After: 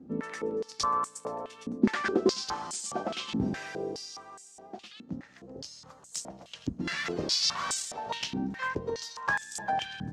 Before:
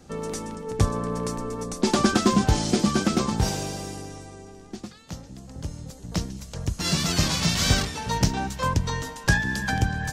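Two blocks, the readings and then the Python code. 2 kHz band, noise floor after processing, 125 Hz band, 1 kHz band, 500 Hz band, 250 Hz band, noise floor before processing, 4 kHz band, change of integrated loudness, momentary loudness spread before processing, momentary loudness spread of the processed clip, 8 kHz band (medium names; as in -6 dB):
-5.5 dB, -55 dBFS, -16.5 dB, -4.0 dB, -4.0 dB, -8.0 dB, -45 dBFS, -5.0 dB, -7.0 dB, 19 LU, 17 LU, -7.0 dB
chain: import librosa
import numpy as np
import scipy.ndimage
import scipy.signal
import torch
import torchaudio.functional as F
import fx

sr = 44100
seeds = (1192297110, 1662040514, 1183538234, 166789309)

y = fx.echo_split(x, sr, split_hz=2700.0, low_ms=128, high_ms=233, feedback_pct=52, wet_db=-13.0)
y = fx.rider(y, sr, range_db=4, speed_s=2.0)
y = fx.buffer_glitch(y, sr, at_s=(2.67,), block=512, repeats=4)
y = fx.filter_held_bandpass(y, sr, hz=4.8, low_hz=260.0, high_hz=7900.0)
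y = F.gain(torch.from_numpy(y), 5.5).numpy()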